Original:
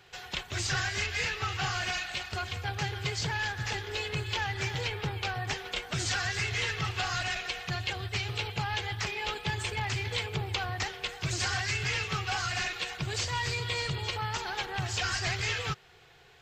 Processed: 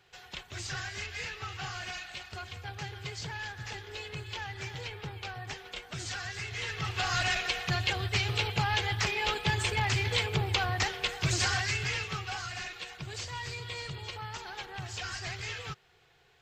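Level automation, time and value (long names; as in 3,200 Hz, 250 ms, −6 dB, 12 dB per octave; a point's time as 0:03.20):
0:06.50 −7 dB
0:07.23 +3.5 dB
0:11.30 +3.5 dB
0:12.53 −7 dB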